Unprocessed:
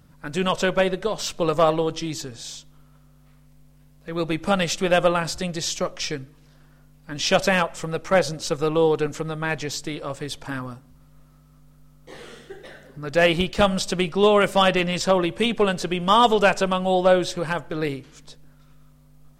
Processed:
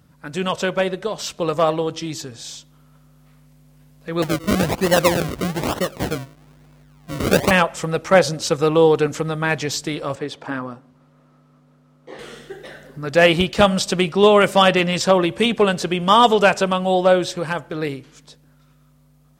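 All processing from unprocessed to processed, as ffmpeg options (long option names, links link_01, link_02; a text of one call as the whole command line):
ffmpeg -i in.wav -filter_complex "[0:a]asettb=1/sr,asplit=3[link_01][link_02][link_03];[link_01]atrim=end=4.224[link_04];[link_02]atrim=start=4.22:end=7.51,asetpts=PTS-STARTPTS,afade=type=in:duration=0.004:curve=qsin,afade=type=out:start_time=3.286:duration=0.004:curve=qsin,equalizer=frequency=900:width=1.2:gain=-7.5,acrusher=samples=36:mix=1:aa=0.000001:lfo=1:lforange=36:lforate=1.1[link_05];[link_03]atrim=start=7.506[link_06];[link_04][link_05]acrossfade=duration=0.004:curve1=hsin:curve2=qsin[link_07];[link_07][link_06]acrossfade=duration=0.004:curve1=qsin:curve2=hsin,asettb=1/sr,asplit=3[link_08][link_09][link_10];[link_08]atrim=end=10.154[link_11];[link_09]atrim=start=10.15:end=12.19,asetpts=PTS-STARTPTS,afade=type=in:duration=0.004:curve=qsin,afade=type=out:start_time=2.036:duration=0.004:curve=qsin,highpass=380,aemphasis=mode=reproduction:type=riaa[link_12];[link_10]atrim=start=12.186[link_13];[link_11][link_12]acrossfade=duration=0.004:curve1=hsin:curve2=qsin[link_14];[link_14][link_13]acrossfade=duration=0.004:curve1=qsin:curve2=hsin,highpass=60,dynaudnorm=framelen=470:gausssize=13:maxgain=11.5dB" out.wav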